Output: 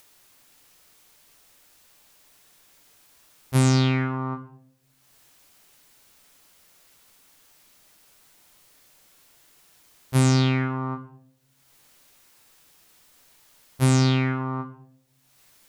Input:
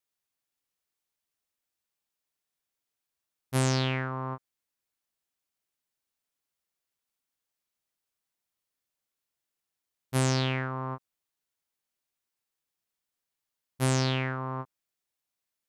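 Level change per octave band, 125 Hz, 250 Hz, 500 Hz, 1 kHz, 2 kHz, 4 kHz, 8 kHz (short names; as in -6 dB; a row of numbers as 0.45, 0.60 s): +8.0, +9.5, +3.5, +3.5, +3.5, +3.5, +4.0 dB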